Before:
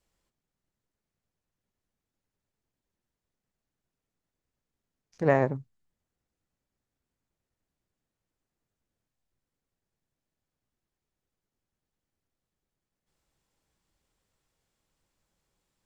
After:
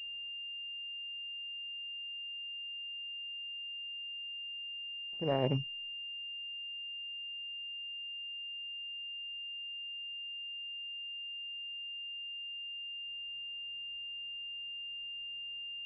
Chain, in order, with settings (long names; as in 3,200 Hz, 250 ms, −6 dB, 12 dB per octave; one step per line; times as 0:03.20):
reversed playback
downward compressor 6 to 1, threshold −32 dBFS, peak gain reduction 15 dB
reversed playback
switching amplifier with a slow clock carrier 2,800 Hz
level +4.5 dB